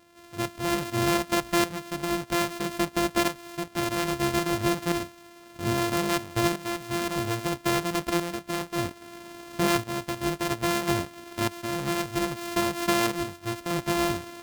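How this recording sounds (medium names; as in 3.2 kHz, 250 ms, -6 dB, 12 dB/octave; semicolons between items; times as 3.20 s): a buzz of ramps at a fixed pitch in blocks of 128 samples; tremolo saw up 0.61 Hz, depth 65%; AAC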